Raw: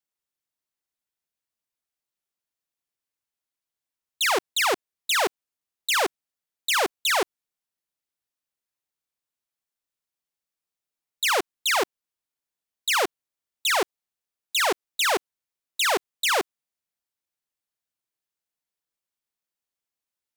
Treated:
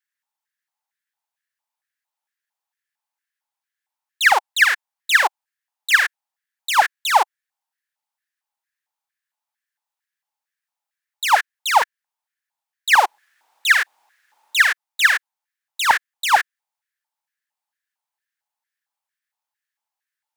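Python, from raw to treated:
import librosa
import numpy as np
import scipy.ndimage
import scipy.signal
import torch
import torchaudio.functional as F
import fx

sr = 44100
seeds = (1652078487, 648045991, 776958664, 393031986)

y = fx.dmg_noise_colour(x, sr, seeds[0], colour='pink', level_db=-66.0, at=(13.04, 14.61), fade=0.02)
y = fx.filter_lfo_highpass(y, sr, shape='square', hz=2.2, low_hz=850.0, high_hz=1700.0, q=7.2)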